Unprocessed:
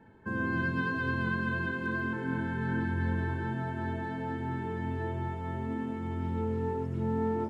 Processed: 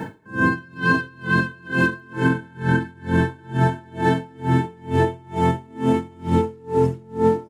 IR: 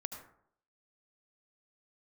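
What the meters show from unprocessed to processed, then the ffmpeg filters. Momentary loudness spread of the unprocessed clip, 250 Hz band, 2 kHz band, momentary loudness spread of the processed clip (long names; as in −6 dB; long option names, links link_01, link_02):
5 LU, +10.0 dB, +10.0 dB, 3 LU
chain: -filter_complex "[0:a]highpass=89,bass=frequency=250:gain=1,treble=frequency=4000:gain=9,aecho=1:1:6.5:0.4,asplit=2[link_01][link_02];[1:a]atrim=start_sample=2205,asetrate=24696,aresample=44100[link_03];[link_02][link_03]afir=irnorm=-1:irlink=0,volume=-9dB[link_04];[link_01][link_04]amix=inputs=2:normalize=0,acompressor=threshold=-36dB:ratio=6,alimiter=level_in=32.5dB:limit=-1dB:release=50:level=0:latency=1,aeval=exprs='val(0)*pow(10,-31*(0.5-0.5*cos(2*PI*2.2*n/s))/20)':channel_layout=same,volume=-6.5dB"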